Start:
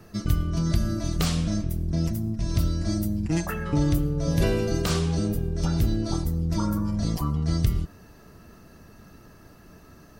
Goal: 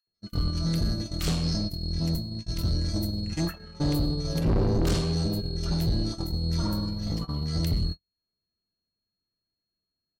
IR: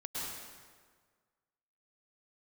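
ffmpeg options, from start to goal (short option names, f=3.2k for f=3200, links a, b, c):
-filter_complex "[0:a]acompressor=mode=upward:threshold=-33dB:ratio=2.5,aeval=exprs='val(0)+0.02*sin(2*PI*4300*n/s)':c=same,asplit=3[a][b][c];[a]afade=t=out:st=4.38:d=0.02[d];[b]tiltshelf=f=640:g=9.5,afade=t=in:st=4.38:d=0.02,afade=t=out:st=4.86:d=0.02[e];[c]afade=t=in:st=4.86:d=0.02[f];[d][e][f]amix=inputs=3:normalize=0,acrossover=split=1100[g][h];[g]adelay=70[i];[i][h]amix=inputs=2:normalize=0,asettb=1/sr,asplit=3[j][k][l];[j]atrim=end=6.894[m];[k]atrim=start=6.89:end=7.48,asetpts=PTS-STARTPTS,afade=t=in:d=0.004:c=qsin,afade=t=out:st=0.586:d=0.004:c=qsin,adynamicsmooth=sensitivity=4.5:basefreq=5.7k[n];[l]atrim=start=7.476[o];[m][n]acrossfade=d=0.004:c1=hsin:c2=qsin[p];[p][o]acrossfade=d=0.004:c1=qsin:c2=hsin,asplit=2[q][r];[r]adelay=98,lowpass=f=2k:p=1,volume=-15dB,asplit=2[s][t];[t]adelay=98,lowpass=f=2k:p=1,volume=0.39,asplit=2[u][v];[v]adelay=98,lowpass=f=2k:p=1,volume=0.39,asplit=2[w][x];[x]adelay=98,lowpass=f=2k:p=1,volume=0.39[y];[s][u][w][y]amix=inputs=4:normalize=0[z];[q][z]amix=inputs=2:normalize=0,asoftclip=type=tanh:threshold=-21dB,agate=range=-51dB:threshold=-27dB:ratio=16:detection=peak,asettb=1/sr,asplit=3[aa][ab][ac];[aa]atrim=end=1.434[ad];[ab]atrim=start=1.43:end=1.93,asetpts=PTS-STARTPTS,afade=t=in:d=0.004:c=qsin,afade=t=out:st=0.496:d=0.004:c=qsin,equalizer=f=5.1k:w=7.3:g=14.5[ae];[ac]atrim=start=1.926[af];[ad][ae]acrossfade=d=0.004:c1=hsin:c2=qsin[ag];[ag][af]acrossfade=d=0.004:c1=qsin:c2=hsin,volume=1dB"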